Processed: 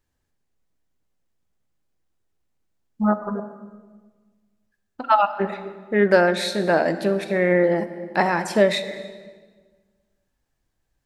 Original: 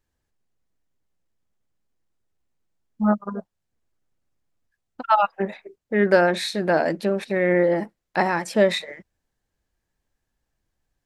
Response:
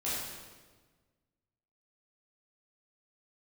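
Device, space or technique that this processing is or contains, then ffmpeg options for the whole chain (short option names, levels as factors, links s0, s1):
compressed reverb return: -filter_complex "[0:a]asplit=2[s0][s1];[1:a]atrim=start_sample=2205[s2];[s1][s2]afir=irnorm=-1:irlink=0,acompressor=threshold=0.178:ratio=6,volume=0.266[s3];[s0][s3]amix=inputs=2:normalize=0"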